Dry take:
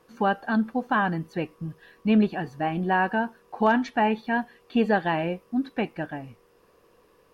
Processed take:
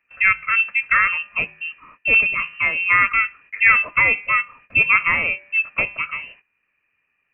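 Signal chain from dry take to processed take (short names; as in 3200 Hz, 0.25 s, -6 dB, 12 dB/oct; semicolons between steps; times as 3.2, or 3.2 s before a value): low shelf 120 Hz -12 dB; de-hum 210.8 Hz, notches 33; inverted band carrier 2900 Hz; gate -54 dBFS, range -17 dB; gain +7.5 dB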